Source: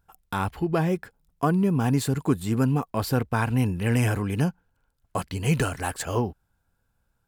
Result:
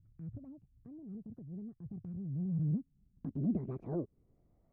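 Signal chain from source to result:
gliding playback speed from 169% → 139%
downward compressor 16 to 1, threshold −33 dBFS, peak gain reduction 17 dB
low-pass filter sweep 120 Hz → 660 Hz, 0:02.24–0:04.78
transient designer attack −7 dB, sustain 0 dB
level +2 dB

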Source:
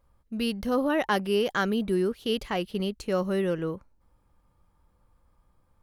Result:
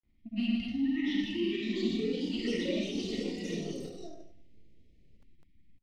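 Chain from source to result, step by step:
downward compressor 3 to 1, threshold −33 dBFS, peak gain reduction 9.5 dB
linear-phase brick-wall band-stop 350–1,800 Hz
soft clipping −26.5 dBFS, distortion −26 dB
low-pass filter 2,800 Hz 12 dB per octave
ambience of single reflections 18 ms −4.5 dB, 56 ms −3 dB
four-comb reverb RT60 1 s, combs from 26 ms, DRR −4 dB
granular cloud, pitch spread up and down by 0 semitones
delay with pitch and tempo change per echo 761 ms, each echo +4 semitones, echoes 3
low-shelf EQ 210 Hz −8 dB

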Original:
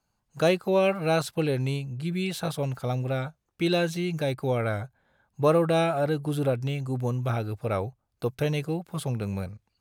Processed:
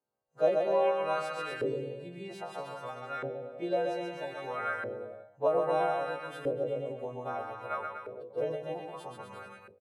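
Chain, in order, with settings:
every partial snapped to a pitch grid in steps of 2 semitones
bouncing-ball delay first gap 130 ms, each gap 0.9×, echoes 5
auto-filter band-pass saw up 0.62 Hz 400–1,500 Hz
every ending faded ahead of time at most 110 dB per second

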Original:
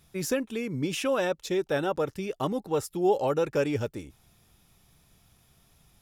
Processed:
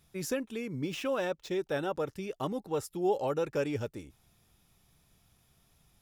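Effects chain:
0:00.75–0:01.51: running median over 5 samples
level −5 dB

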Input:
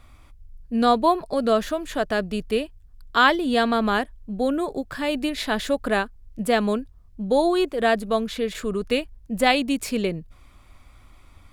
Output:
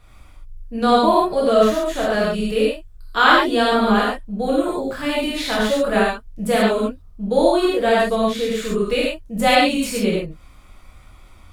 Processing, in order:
reverb whose tail is shaped and stops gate 160 ms flat, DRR −6.5 dB
level −2.5 dB

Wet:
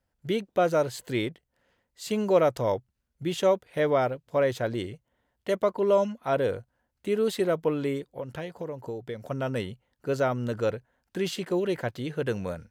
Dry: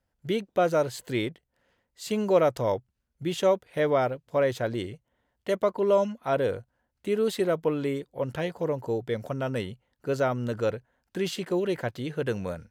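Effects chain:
0:08.04–0:09.31: downward compressor 4 to 1, threshold −33 dBFS, peak gain reduction 8.5 dB

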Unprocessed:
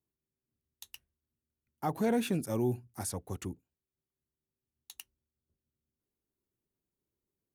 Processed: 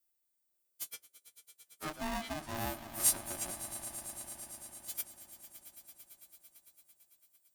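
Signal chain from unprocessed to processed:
every partial snapped to a pitch grid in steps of 2 semitones
0:00.87–0:02.57: treble cut that deepens with the level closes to 2,200 Hz, closed at −28 dBFS
high-shelf EQ 5,600 Hz +11 dB
echo that builds up and dies away 112 ms, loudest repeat 5, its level −17 dB
ring modulator with a square carrier 460 Hz
level −8 dB

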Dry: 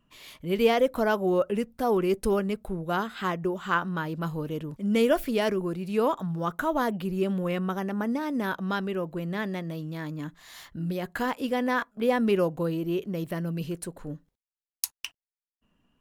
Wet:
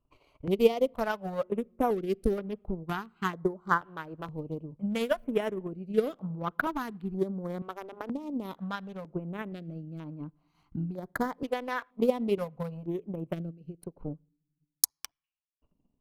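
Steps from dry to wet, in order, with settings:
adaptive Wiener filter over 25 samples
0:13.50–0:14.04: downward compressor 12 to 1, threshold −36 dBFS, peak gain reduction 8.5 dB
on a send at −20 dB: convolution reverb RT60 0.95 s, pre-delay 7 ms
on the sum: transient designer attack +12 dB, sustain −6 dB
notch on a step sequencer 2.1 Hz 200–7,700 Hz
level −6.5 dB

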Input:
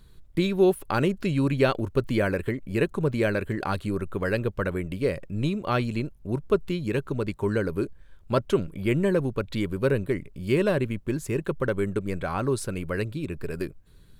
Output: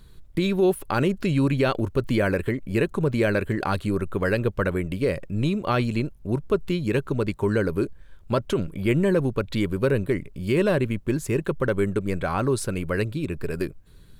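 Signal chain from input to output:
brickwall limiter −16 dBFS, peak gain reduction 7 dB
level +3.5 dB

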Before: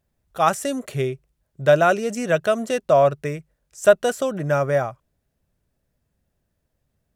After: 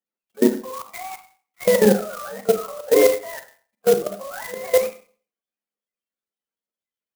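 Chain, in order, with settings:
frequency axis turned over on the octave scale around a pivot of 540 Hz
Chebyshev high-pass filter 200 Hz, order 6
noise reduction from a noise print of the clip's start 19 dB
low-pass filter 3,600 Hz 24 dB per octave
in parallel at 0 dB: downward compressor 6 to 1, threshold −27 dBFS, peak gain reduction 16.5 dB
on the sum: flanger 1.6 Hz, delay 3 ms, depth 8.9 ms, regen −80%
output level in coarse steps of 21 dB
four-comb reverb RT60 0.43 s, combs from 29 ms, DRR 7.5 dB
converter with an unsteady clock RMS 0.06 ms
level +8.5 dB

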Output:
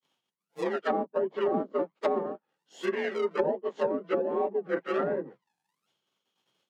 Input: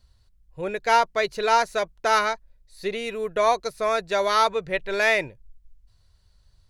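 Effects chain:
partials spread apart or drawn together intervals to 89%
in parallel at −3.5 dB: sample-and-hold swept by an LFO 41×, swing 60% 1.3 Hz
on the sum: downward expander −52 dBFS
Bessel high-pass filter 320 Hz, order 8
treble cut that deepens with the level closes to 410 Hz, closed at −20 dBFS

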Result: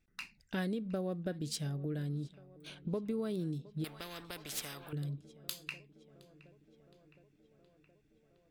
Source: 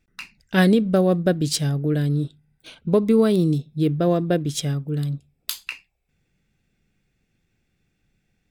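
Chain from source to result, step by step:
downward compressor 3 to 1, threshold −30 dBFS, peak gain reduction 13 dB
on a send: tape delay 717 ms, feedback 77%, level −20 dB, low-pass 3,300 Hz
0:03.84–0:04.93: on the sum: every bin compressed towards the loudest bin 4 to 1
level −7.5 dB

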